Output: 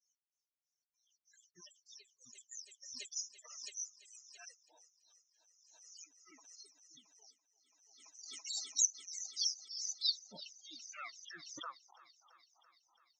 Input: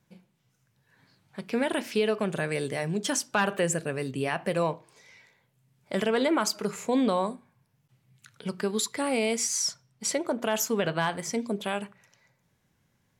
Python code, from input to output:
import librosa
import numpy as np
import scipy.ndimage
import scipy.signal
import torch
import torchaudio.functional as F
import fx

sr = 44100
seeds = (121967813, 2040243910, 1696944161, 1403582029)

p1 = fx.pitch_ramps(x, sr, semitones=-10.5, every_ms=166)
p2 = fx.high_shelf(p1, sr, hz=3100.0, db=11.0)
p3 = fx.rev_gated(p2, sr, seeds[0], gate_ms=140, shape='flat', drr_db=9.0)
p4 = fx.granulator(p3, sr, seeds[1], grain_ms=186.0, per_s=3.2, spray_ms=14.0, spread_st=0)
p5 = fx.filter_sweep_bandpass(p4, sr, from_hz=6000.0, to_hz=840.0, start_s=9.66, end_s=12.14, q=3.3)
p6 = fx.spec_topn(p5, sr, count=16)
p7 = p6 + fx.echo_thinned(p6, sr, ms=335, feedback_pct=69, hz=240.0, wet_db=-18, dry=0)
p8 = fx.pre_swell(p7, sr, db_per_s=42.0)
y = p8 * 10.0 ** (-3.0 / 20.0)